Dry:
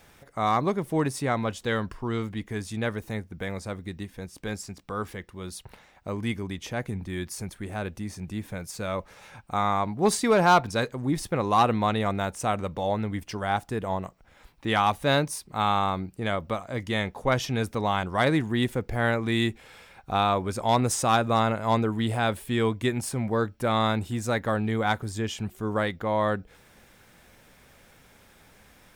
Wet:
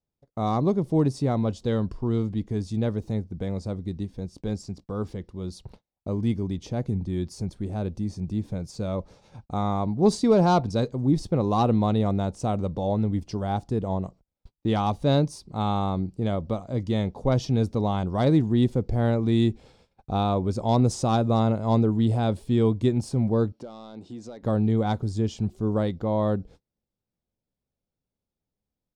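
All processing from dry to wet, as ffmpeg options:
-filter_complex "[0:a]asettb=1/sr,asplit=3[a][b][c];[a]atrim=end=23.524[d];[b]atrim=start=23.52:end=24.43,asetpts=PTS-STARTPTS,afade=t=in:d=0.004:c=qsin,afade=t=out:st=0.906:d=0.004:c=qsin,highpass=270,lowpass=6.1k,acompressor=threshold=-42dB:ratio=2.5:attack=3.2:release=140:knee=1:detection=peak,asoftclip=type=hard:threshold=-32.5dB[e];[c]atrim=start=24.426[f];[d][e]acrossfade=d=0.004:c1=hsin:c2=qsin[g];[g][f]acrossfade=d=0.004:c1=qsin:c2=hsin,agate=range=-34dB:threshold=-48dB:ratio=16:detection=peak,firequalizer=gain_entry='entry(160,0);entry(1700,-21);entry(4500,-7);entry(13000,-26)':delay=0.05:min_phase=1,volume=6dB"

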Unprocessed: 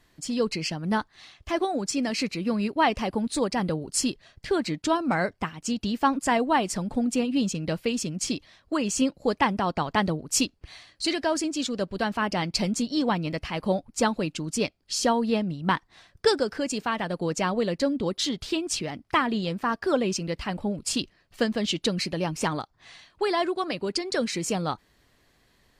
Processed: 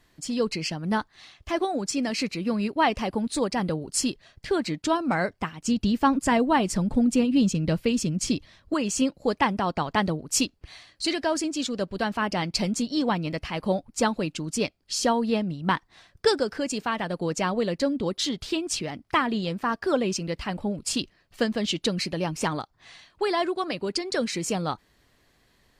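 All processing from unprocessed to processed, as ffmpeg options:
-filter_complex "[0:a]asettb=1/sr,asplit=3[a][b][c];[a]atrim=end=5.654[d];[b]atrim=start=5.65:end=8.74,asetpts=PTS-STARTPTS,afade=t=in:d=0.004:c=qsin,afade=t=out:st=3.086:d=0.004:c=qsin,lowshelf=f=220:g=9.5,bandreject=f=740:w=14[e];[c]atrim=start=8.736[f];[d][e]acrossfade=d=0.004:c1=hsin:c2=qsin[g];[g][f]acrossfade=d=0.004:c1=qsin:c2=hsin"

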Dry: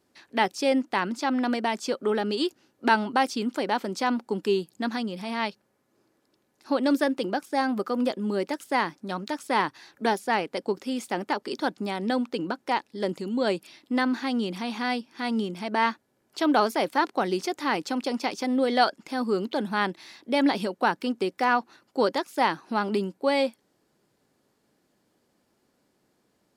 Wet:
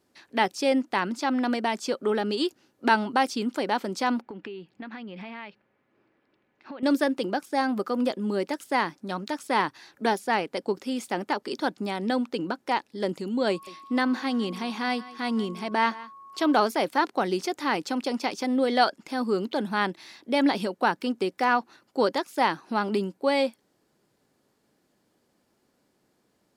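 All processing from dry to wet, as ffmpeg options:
-filter_complex "[0:a]asettb=1/sr,asplit=3[a][b][c];[a]atrim=end=4.214[d];[b]atrim=start=4.21:end=6.83,asetpts=PTS-STARTPTS,afade=t=in:d=0.004:c=qsin,afade=t=out:st=2.616:d=0.004:c=qsin,acompressor=threshold=-35dB:ratio=12:attack=3.2:release=140:knee=1:detection=peak,lowpass=f=2.4k:t=q:w=1.9[e];[c]atrim=start=6.826[f];[d][e]acrossfade=d=0.004:c1=hsin:c2=qsin[g];[g][f]acrossfade=d=0.004:c1=qsin:c2=hsin,asettb=1/sr,asplit=3[h][i][j];[h]atrim=end=13.504[k];[i]atrim=start=13.5:end=16.59,asetpts=PTS-STARTPTS,afade=t=in:d=0.004:c=qsin,afade=t=out:st=3.086:d=0.004:c=qsin,aeval=exprs='val(0)+0.00562*sin(2*PI*1100*n/s)':c=same,aecho=1:1:169:0.119,atrim=end_sample=136269[l];[j]atrim=start=16.586[m];[k][l]acrossfade=d=0.004:c1=hsin:c2=qsin[n];[n][m]acrossfade=d=0.004:c1=qsin:c2=hsin"

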